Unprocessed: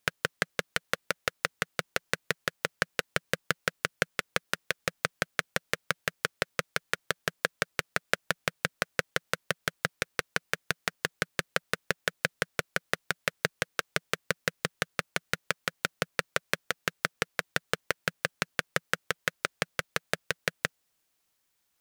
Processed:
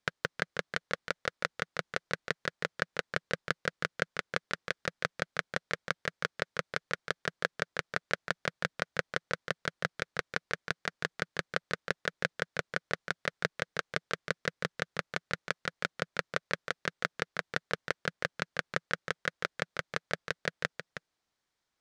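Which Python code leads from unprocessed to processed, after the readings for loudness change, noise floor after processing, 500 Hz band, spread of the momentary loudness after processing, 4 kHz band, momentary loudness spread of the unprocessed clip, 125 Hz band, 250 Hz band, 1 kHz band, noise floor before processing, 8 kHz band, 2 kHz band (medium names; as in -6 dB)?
-3.5 dB, -85 dBFS, -2.0 dB, 3 LU, -5.0 dB, 3 LU, -2.0 dB, -2.0 dB, -2.5 dB, -76 dBFS, -9.5 dB, -3.0 dB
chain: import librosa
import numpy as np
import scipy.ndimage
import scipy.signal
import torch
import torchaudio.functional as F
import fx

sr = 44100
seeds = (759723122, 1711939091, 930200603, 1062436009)

y = scipy.signal.sosfilt(scipy.signal.butter(2, 5000.0, 'lowpass', fs=sr, output='sos'), x)
y = fx.peak_eq(y, sr, hz=2700.0, db=-5.0, octaves=0.5)
y = y + 10.0 ** (-9.5 / 20.0) * np.pad(y, (int(318 * sr / 1000.0), 0))[:len(y)]
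y = F.gain(torch.from_numpy(y), -2.5).numpy()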